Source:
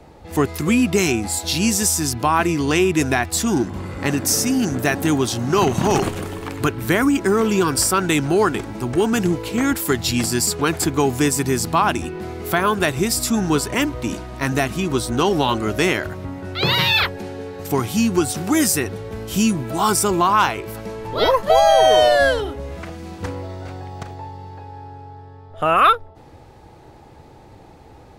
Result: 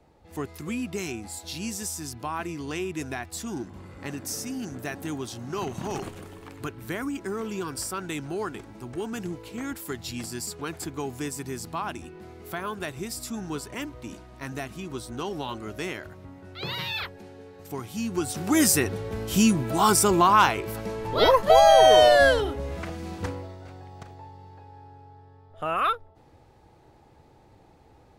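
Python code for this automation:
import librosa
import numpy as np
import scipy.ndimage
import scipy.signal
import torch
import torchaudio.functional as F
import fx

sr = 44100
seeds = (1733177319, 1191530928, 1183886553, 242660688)

y = fx.gain(x, sr, db=fx.line((17.89, -14.5), (18.67, -2.0), (23.18, -2.0), (23.58, -11.0)))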